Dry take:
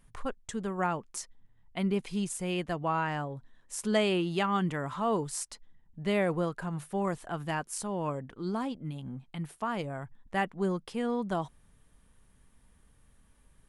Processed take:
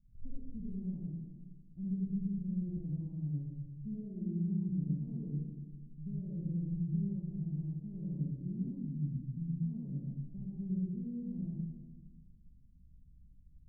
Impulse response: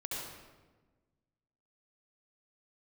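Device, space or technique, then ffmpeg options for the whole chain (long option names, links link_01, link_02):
club heard from the street: -filter_complex "[0:a]alimiter=level_in=1dB:limit=-24dB:level=0:latency=1,volume=-1dB,lowpass=frequency=210:width=0.5412,lowpass=frequency=210:width=1.3066[link_01];[1:a]atrim=start_sample=2205[link_02];[link_01][link_02]afir=irnorm=-1:irlink=0"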